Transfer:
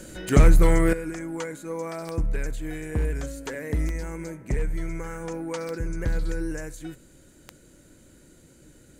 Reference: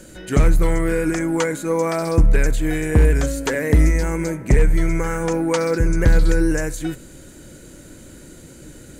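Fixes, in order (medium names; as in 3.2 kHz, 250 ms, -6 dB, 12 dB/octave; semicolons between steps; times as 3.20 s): de-click; gain correction +12 dB, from 0.93 s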